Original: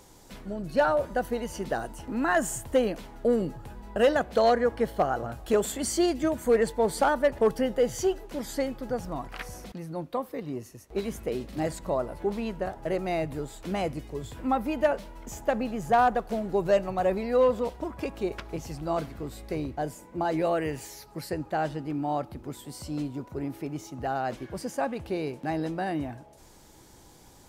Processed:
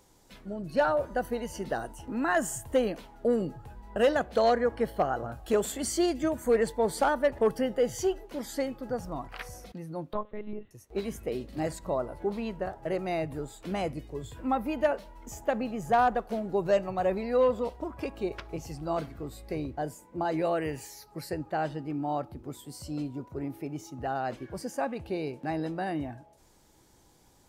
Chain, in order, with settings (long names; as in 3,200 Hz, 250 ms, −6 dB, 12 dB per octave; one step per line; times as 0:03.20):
noise reduction from a noise print of the clip's start 6 dB
0:10.13–0:10.71: one-pitch LPC vocoder at 8 kHz 210 Hz
level −2 dB